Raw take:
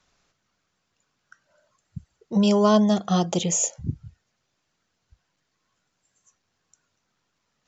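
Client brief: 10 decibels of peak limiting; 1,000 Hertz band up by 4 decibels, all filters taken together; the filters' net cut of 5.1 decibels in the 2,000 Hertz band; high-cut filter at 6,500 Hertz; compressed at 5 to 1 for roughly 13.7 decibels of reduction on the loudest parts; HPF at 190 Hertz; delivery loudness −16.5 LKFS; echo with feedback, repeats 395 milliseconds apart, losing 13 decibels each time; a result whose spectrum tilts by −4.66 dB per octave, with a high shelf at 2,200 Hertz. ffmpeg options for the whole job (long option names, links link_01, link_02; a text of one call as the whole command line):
ffmpeg -i in.wav -af "highpass=190,lowpass=6500,equalizer=frequency=1000:width_type=o:gain=8,equalizer=frequency=2000:width_type=o:gain=-8.5,highshelf=frequency=2200:gain=-7.5,acompressor=threshold=-28dB:ratio=5,alimiter=level_in=4dB:limit=-24dB:level=0:latency=1,volume=-4dB,aecho=1:1:395|790|1185:0.224|0.0493|0.0108,volume=21.5dB" out.wav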